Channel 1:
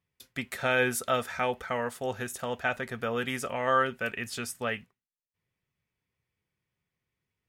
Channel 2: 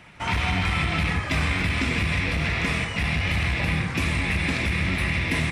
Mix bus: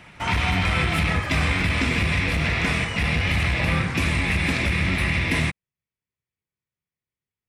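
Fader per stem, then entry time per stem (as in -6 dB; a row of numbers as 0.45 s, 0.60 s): -9.0 dB, +2.0 dB; 0.00 s, 0.00 s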